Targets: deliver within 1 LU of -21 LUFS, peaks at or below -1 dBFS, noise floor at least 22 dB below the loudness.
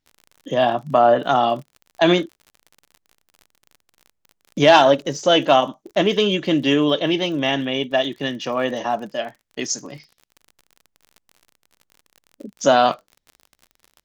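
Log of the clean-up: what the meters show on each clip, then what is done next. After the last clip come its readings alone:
tick rate 44 per s; loudness -19.0 LUFS; peak level -2.0 dBFS; loudness target -21.0 LUFS
-> de-click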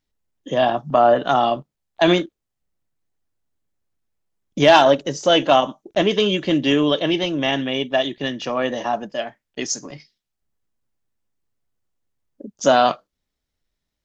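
tick rate 0 per s; loudness -19.0 LUFS; peak level -2.0 dBFS; loudness target -21.0 LUFS
-> trim -2 dB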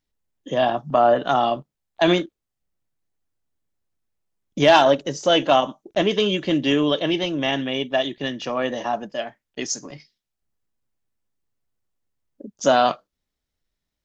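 loudness -21.0 LUFS; peak level -4.0 dBFS; noise floor -82 dBFS

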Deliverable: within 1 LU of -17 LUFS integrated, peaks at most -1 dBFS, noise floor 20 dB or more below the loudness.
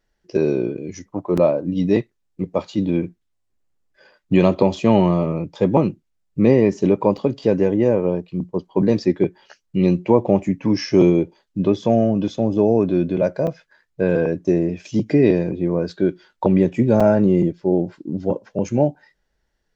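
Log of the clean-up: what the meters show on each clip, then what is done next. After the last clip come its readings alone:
dropouts 4; longest dropout 5.4 ms; loudness -19.5 LUFS; peak level -2.0 dBFS; loudness target -17.0 LUFS
-> interpolate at 1.37/7.17/13.47/17.00 s, 5.4 ms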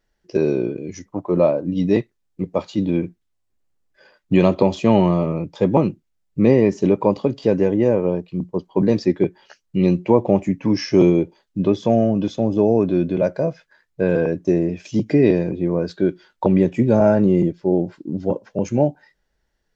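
dropouts 0; loudness -19.5 LUFS; peak level -2.0 dBFS; loudness target -17.0 LUFS
-> trim +2.5 dB; peak limiter -1 dBFS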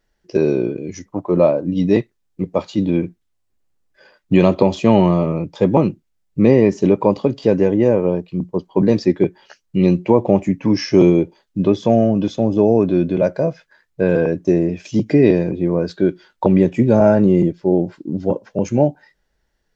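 loudness -17.0 LUFS; peak level -1.0 dBFS; noise floor -69 dBFS

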